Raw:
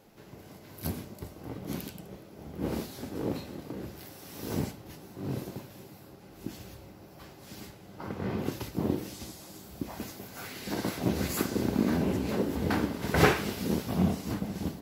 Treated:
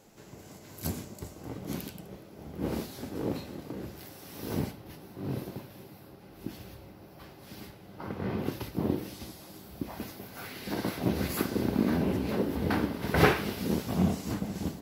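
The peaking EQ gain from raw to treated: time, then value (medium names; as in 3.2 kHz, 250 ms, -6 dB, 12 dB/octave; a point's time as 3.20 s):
peaking EQ 7.2 kHz 0.59 oct
1.38 s +9 dB
1.89 s -1 dB
4.08 s -1 dB
4.71 s -8 dB
13.44 s -8 dB
13.98 s +3 dB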